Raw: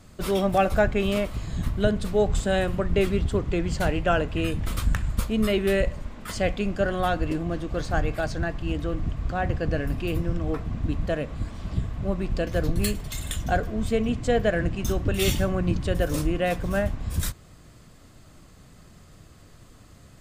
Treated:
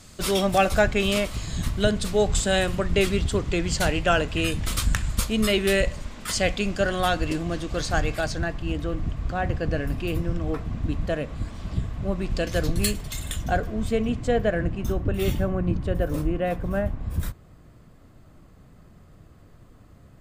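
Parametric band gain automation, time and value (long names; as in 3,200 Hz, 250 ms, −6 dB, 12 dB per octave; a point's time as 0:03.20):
parametric band 6,500 Hz 2.8 octaves
0:08.05 +10.5 dB
0:08.63 +1.5 dB
0:12.12 +1.5 dB
0:12.52 +10 dB
0:13.27 −0.5 dB
0:14.03 −0.5 dB
0:15.15 −12 dB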